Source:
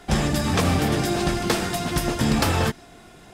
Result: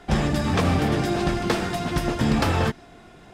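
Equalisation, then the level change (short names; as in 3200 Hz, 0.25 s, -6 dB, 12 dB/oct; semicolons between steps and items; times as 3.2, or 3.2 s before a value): high shelf 5800 Hz -12 dB; 0.0 dB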